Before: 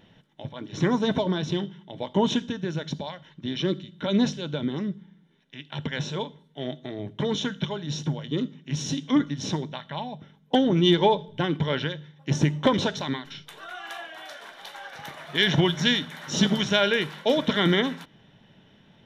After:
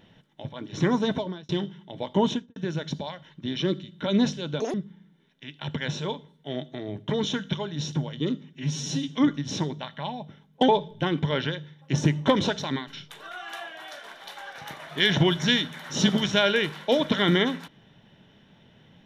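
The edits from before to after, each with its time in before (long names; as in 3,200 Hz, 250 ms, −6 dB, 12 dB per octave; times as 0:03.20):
0:01.01–0:01.49: fade out linear
0:02.23–0:02.56: fade out and dull
0:04.60–0:04.85: play speed 178%
0:08.64–0:09.01: time-stretch 1.5×
0:10.61–0:11.06: remove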